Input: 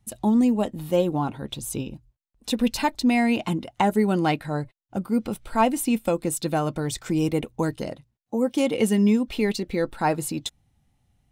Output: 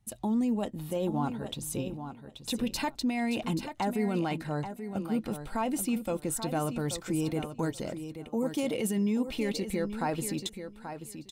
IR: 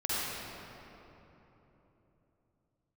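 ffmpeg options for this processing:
-filter_complex "[0:a]asettb=1/sr,asplit=3[s0][s1][s2];[s0]atrim=end=8.404[s3];[s1]atrim=start=8.4:end=8.91,asetpts=PTS-STARTPTS,afade=t=in:d=0.004:c=qsin,afade=t=out:st=0.506:d=0.004:c=qsin,highshelf=f=11000:g=10[s4];[s2]atrim=start=8.906[s5];[s3][s4]acrossfade=d=0.004:c1=hsin:c2=qsin[s6];[s6][s5]acrossfade=d=0.004:c1=qsin:c2=hsin,alimiter=limit=0.133:level=0:latency=1:release=16,aecho=1:1:832|1664:0.335|0.0569,volume=0.596"

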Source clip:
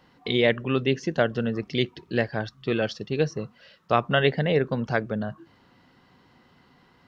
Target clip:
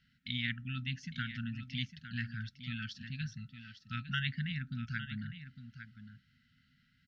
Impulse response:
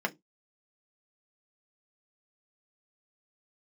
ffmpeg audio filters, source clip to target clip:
-af "firequalizer=gain_entry='entry(120,0);entry(200,-5);entry(3200,-1);entry(7300,-6)':delay=0.05:min_phase=1,afftfilt=real='re*(1-between(b*sr/4096,260,1300))':imag='im*(1-between(b*sr/4096,260,1300))':win_size=4096:overlap=0.75,aecho=1:1:856:0.282,volume=0.398"

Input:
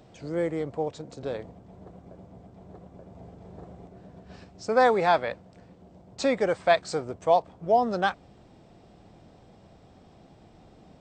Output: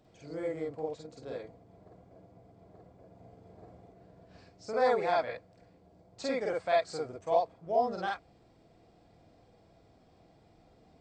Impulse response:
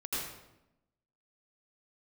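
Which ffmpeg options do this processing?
-filter_complex "[1:a]atrim=start_sample=2205,atrim=end_sample=3969,asetrate=74970,aresample=44100[s0];[0:a][s0]afir=irnorm=-1:irlink=0,volume=0.841"

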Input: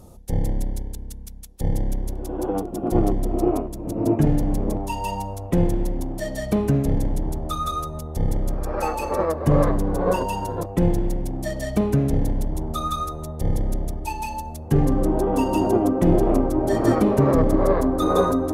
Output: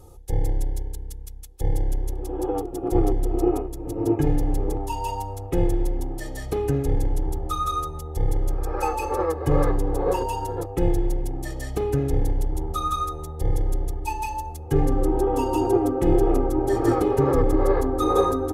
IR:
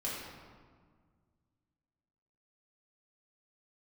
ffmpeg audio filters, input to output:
-af "aecho=1:1:2.4:0.84,volume=0.631"

